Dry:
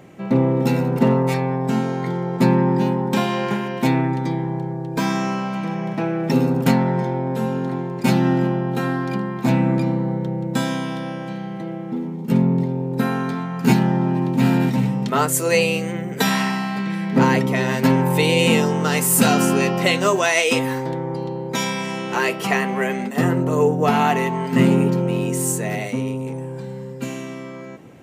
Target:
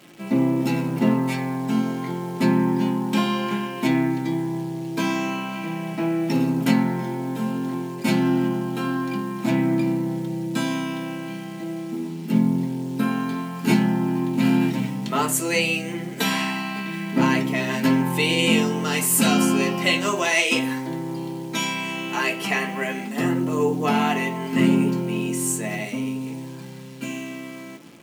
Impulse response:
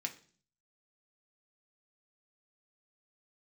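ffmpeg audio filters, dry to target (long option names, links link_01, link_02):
-filter_complex "[0:a]acrusher=bits=8:dc=4:mix=0:aa=0.000001[link_01];[1:a]atrim=start_sample=2205,asetrate=52920,aresample=44100[link_02];[link_01][link_02]afir=irnorm=-1:irlink=0"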